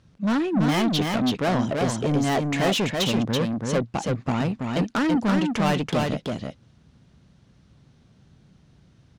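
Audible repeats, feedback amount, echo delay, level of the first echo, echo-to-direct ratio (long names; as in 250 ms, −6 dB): 1, repeats not evenly spaced, 331 ms, −3.5 dB, −3.5 dB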